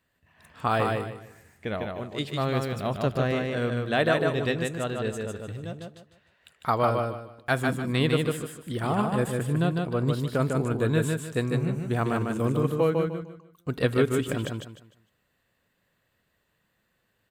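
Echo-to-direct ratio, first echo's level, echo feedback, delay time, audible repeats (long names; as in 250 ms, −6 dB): −3.0 dB, −3.5 dB, 29%, 151 ms, 3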